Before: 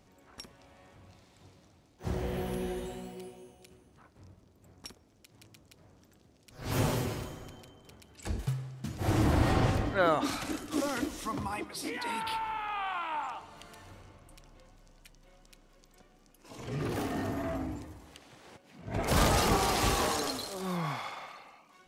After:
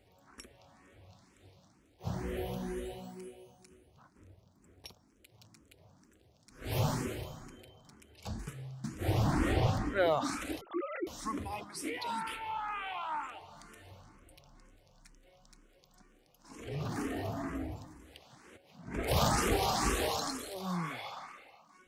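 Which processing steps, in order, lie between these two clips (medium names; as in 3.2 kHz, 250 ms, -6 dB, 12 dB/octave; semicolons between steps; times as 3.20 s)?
10.61–11.07 s: formants replaced by sine waves; barber-pole phaser +2.1 Hz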